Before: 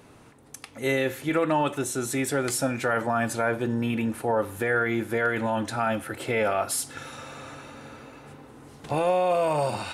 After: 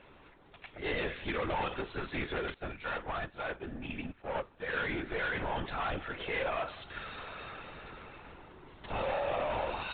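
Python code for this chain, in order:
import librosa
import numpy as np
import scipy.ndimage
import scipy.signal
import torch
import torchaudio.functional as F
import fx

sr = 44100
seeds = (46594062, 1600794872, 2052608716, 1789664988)

y = fx.tilt_shelf(x, sr, db=-4.0, hz=750.0)
y = fx.tube_stage(y, sr, drive_db=27.0, bias=0.3)
y = y + 10.0 ** (-19.0 / 20.0) * np.pad(y, (int(197 * sr / 1000.0), 0))[:len(y)]
y = fx.lpc_vocoder(y, sr, seeds[0], excitation='whisper', order=16)
y = fx.upward_expand(y, sr, threshold_db=-40.0, expansion=2.5, at=(2.54, 4.76))
y = F.gain(torch.from_numpy(y), -3.0).numpy()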